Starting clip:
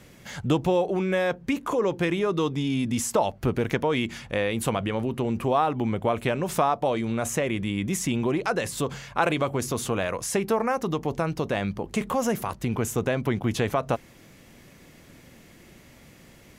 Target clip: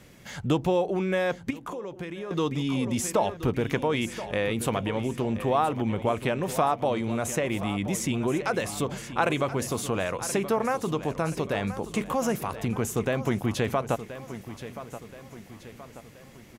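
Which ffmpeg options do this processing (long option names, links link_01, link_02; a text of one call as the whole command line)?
ffmpeg -i in.wav -filter_complex "[0:a]aecho=1:1:1027|2054|3081|4108|5135:0.224|0.105|0.0495|0.0232|0.0109,asettb=1/sr,asplit=3[link_01][link_02][link_03];[link_01]atrim=end=1.504[link_04];[link_02]atrim=start=1.5:end=2.31,asetpts=PTS-STARTPTS,afade=type=in:duration=0.004:curve=qsin,afade=type=out:start_time=0.806:duration=0.004:curve=qsin,acompressor=threshold=-31dB:ratio=12[link_05];[link_03]atrim=start=2.306[link_06];[link_04][link_05]acrossfade=duration=0.004:curve1=hsin:curve2=qsin[link_07];[link_07][link_06]acrossfade=duration=0.004:curve1=qsin:curve2=hsin,volume=-1.5dB" out.wav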